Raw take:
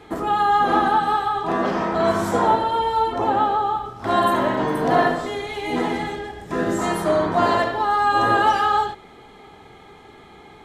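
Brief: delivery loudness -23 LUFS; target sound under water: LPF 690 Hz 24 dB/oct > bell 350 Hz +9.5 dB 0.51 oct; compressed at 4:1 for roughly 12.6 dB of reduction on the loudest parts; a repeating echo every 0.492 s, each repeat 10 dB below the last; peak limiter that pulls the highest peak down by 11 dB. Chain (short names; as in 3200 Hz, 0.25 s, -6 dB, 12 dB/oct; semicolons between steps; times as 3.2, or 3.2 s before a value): compressor 4:1, threshold -29 dBFS; limiter -29.5 dBFS; LPF 690 Hz 24 dB/oct; bell 350 Hz +9.5 dB 0.51 oct; feedback echo 0.492 s, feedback 32%, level -10 dB; gain +14 dB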